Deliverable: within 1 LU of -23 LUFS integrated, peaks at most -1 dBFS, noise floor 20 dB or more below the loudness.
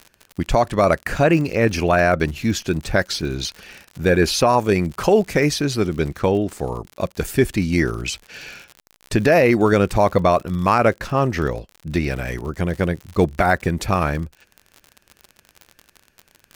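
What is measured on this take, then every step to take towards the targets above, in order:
ticks 56/s; loudness -19.5 LUFS; peak -3.5 dBFS; loudness target -23.0 LUFS
-> de-click; gain -3.5 dB

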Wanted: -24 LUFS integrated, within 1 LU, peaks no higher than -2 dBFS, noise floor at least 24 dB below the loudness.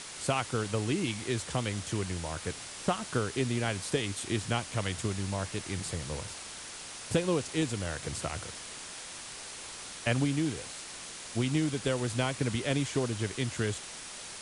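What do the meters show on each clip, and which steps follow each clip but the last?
noise floor -44 dBFS; noise floor target -57 dBFS; loudness -33.0 LUFS; peak -15.0 dBFS; loudness target -24.0 LUFS
-> noise print and reduce 13 dB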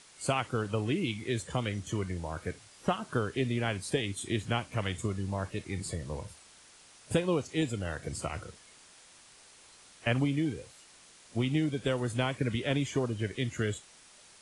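noise floor -57 dBFS; loudness -33.0 LUFS; peak -16.0 dBFS; loudness target -24.0 LUFS
-> gain +9 dB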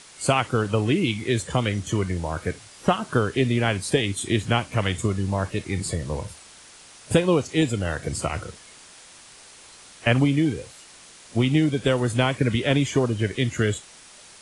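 loudness -24.0 LUFS; peak -7.0 dBFS; noise floor -48 dBFS

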